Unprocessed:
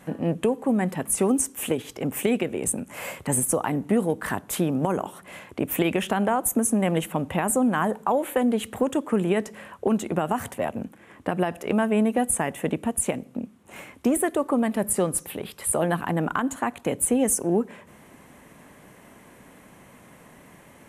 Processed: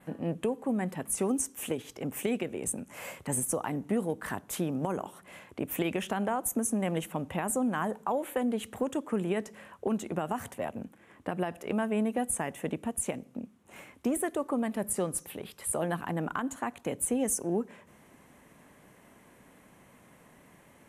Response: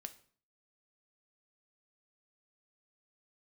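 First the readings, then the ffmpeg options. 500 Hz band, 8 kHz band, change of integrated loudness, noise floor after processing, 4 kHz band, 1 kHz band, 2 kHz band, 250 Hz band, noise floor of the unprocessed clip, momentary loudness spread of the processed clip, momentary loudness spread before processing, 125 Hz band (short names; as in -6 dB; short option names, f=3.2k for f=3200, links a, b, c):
-7.5 dB, -7.0 dB, -7.5 dB, -59 dBFS, -7.5 dB, -7.5 dB, -7.5 dB, -7.5 dB, -51 dBFS, 9 LU, 9 LU, -7.5 dB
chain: -af "adynamicequalizer=threshold=0.00501:dfrequency=6000:dqfactor=2.8:tfrequency=6000:tqfactor=2.8:attack=5:release=100:ratio=0.375:range=2:mode=boostabove:tftype=bell,volume=-7.5dB"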